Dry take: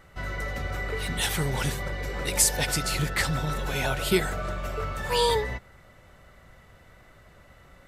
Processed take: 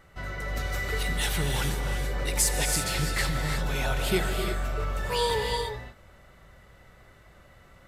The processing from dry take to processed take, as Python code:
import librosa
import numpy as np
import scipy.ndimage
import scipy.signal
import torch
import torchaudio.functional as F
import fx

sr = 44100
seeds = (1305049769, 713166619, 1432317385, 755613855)

p1 = fx.high_shelf(x, sr, hz=2900.0, db=11.5, at=(0.57, 1.03))
p2 = np.clip(10.0 ** (26.5 / 20.0) * p1, -1.0, 1.0) / 10.0 ** (26.5 / 20.0)
p3 = p1 + (p2 * librosa.db_to_amplitude(-11.0))
p4 = fx.rev_gated(p3, sr, seeds[0], gate_ms=370, shape='rising', drr_db=3.5)
y = p4 * librosa.db_to_amplitude(-4.5)